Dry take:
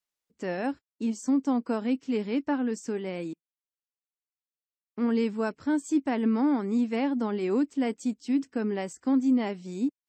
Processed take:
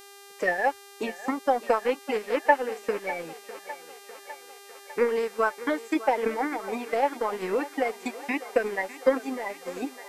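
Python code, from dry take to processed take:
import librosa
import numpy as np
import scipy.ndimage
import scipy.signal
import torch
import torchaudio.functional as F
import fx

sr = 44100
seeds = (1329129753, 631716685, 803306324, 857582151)

p1 = fx.spec_quant(x, sr, step_db=30)
p2 = fx.transient(p1, sr, attack_db=10, sustain_db=-9)
p3 = fx.graphic_eq(p2, sr, hz=(125, 250, 500, 1000, 2000, 4000), db=(-10, -11, 6, 6, 11, -6))
p4 = p3 + fx.echo_thinned(p3, sr, ms=602, feedback_pct=71, hz=350.0, wet_db=-14.5, dry=0)
p5 = fx.dmg_buzz(p4, sr, base_hz=400.0, harmonics=35, level_db=-47.0, tilt_db=-3, odd_only=False)
y = p5 * 10.0 ** (-2.0 / 20.0)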